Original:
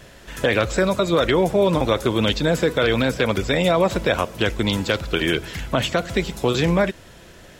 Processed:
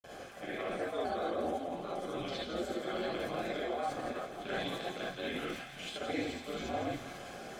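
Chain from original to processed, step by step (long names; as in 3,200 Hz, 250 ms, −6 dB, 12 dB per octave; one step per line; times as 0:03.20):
parametric band 790 Hz +11 dB 0.97 octaves
hum removal 49.62 Hz, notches 7
reversed playback
downward compressor 6 to 1, threshold −32 dBFS, peak gain reduction 21.5 dB
reversed playback
granular cloud, pitch spread up and down by 3 semitones
flanger 0.9 Hz, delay 1.1 ms, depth 2.2 ms, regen −65%
ring modulation 85 Hz
notch comb filter 930 Hz
on a send: delay with a high-pass on its return 168 ms, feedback 64%, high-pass 1,600 Hz, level −7 dB
on the sum: reverb whose tail is shaped and stops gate 90 ms rising, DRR −5 dB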